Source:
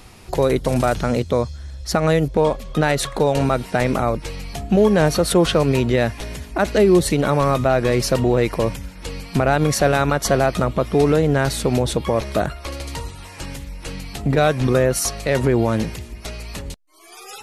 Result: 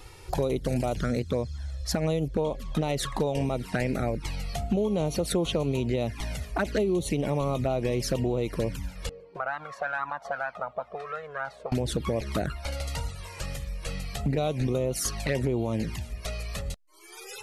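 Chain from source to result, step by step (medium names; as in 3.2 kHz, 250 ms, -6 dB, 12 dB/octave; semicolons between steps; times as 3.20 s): 9.09–11.72 s: auto-wah 340–1400 Hz, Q 3.2, up, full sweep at -12 dBFS; touch-sensitive flanger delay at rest 2.4 ms, full sweep at -13 dBFS; compression 5:1, threshold -23 dBFS, peak gain reduction 11.5 dB; trim -1 dB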